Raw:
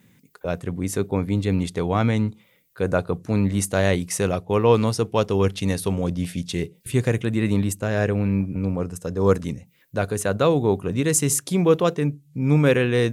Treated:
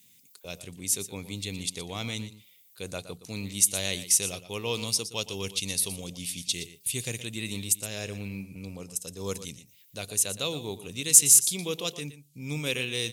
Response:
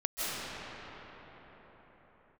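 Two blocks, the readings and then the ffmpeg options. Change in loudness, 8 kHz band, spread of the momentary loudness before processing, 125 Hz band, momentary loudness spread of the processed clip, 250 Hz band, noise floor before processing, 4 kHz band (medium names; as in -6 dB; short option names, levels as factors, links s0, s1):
-4.0 dB, +6.5 dB, 10 LU, -16.0 dB, 16 LU, -16.0 dB, -59 dBFS, +4.0 dB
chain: -af "aecho=1:1:118:0.211,aexciter=amount=9.7:drive=5.2:freq=2400,volume=0.158"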